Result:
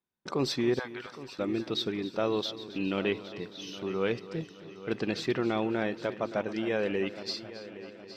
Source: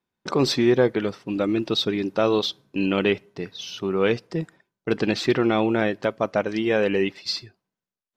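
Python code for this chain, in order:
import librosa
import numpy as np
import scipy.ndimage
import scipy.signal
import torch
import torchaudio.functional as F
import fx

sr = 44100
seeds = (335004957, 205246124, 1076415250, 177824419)

y = fx.highpass(x, sr, hz=830.0, slope=24, at=(0.79, 1.39))
y = fx.echo_heads(y, sr, ms=272, heads='first and third', feedback_pct=57, wet_db=-16.0)
y = y * librosa.db_to_amplitude(-8.5)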